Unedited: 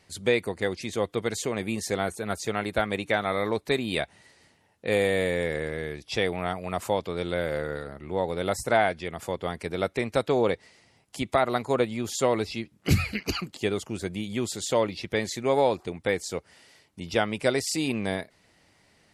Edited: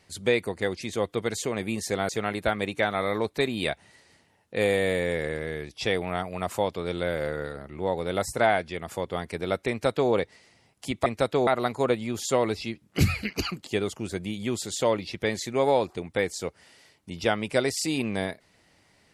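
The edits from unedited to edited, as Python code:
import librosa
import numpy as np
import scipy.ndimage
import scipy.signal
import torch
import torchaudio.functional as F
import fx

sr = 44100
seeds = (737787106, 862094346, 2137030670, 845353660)

y = fx.edit(x, sr, fx.cut(start_s=2.09, length_s=0.31),
    fx.duplicate(start_s=10.01, length_s=0.41, to_s=11.37), tone=tone)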